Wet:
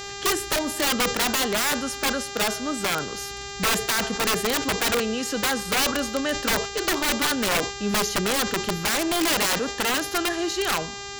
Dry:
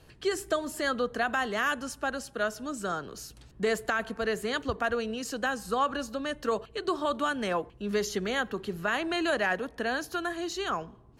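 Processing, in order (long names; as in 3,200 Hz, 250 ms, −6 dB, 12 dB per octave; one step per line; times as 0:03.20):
wrap-around overflow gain 24 dB
hum with harmonics 400 Hz, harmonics 19, −43 dBFS −2 dB per octave
level that may fall only so fast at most 91 dB per second
level +7 dB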